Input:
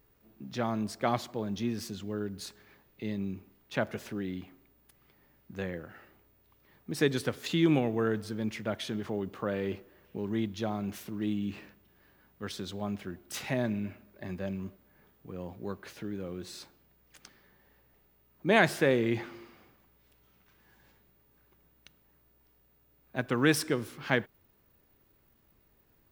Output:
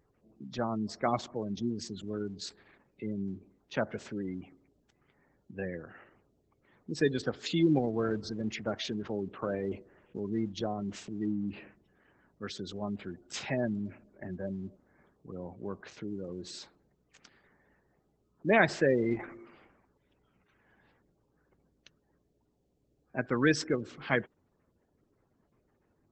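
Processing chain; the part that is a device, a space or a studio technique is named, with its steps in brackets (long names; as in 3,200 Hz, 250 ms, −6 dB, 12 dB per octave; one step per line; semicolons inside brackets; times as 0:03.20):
0:14.53–0:15.48: notch filter 4,200 Hz, Q 9.7
noise-suppressed video call (high-pass filter 100 Hz 6 dB per octave; gate on every frequency bin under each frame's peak −20 dB strong; Opus 12 kbit/s 48,000 Hz)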